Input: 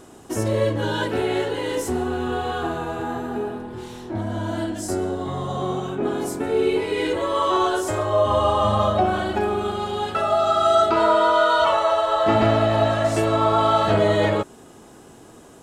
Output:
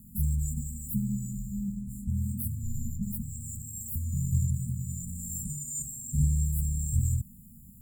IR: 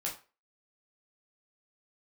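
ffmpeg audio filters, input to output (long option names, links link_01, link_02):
-af "asetrate=88200,aresample=44100,afftfilt=real='re*(1-between(b*sr/4096,530,7300))':imag='im*(1-between(b*sr/4096,530,7300))':win_size=4096:overlap=0.75,afreqshift=-290"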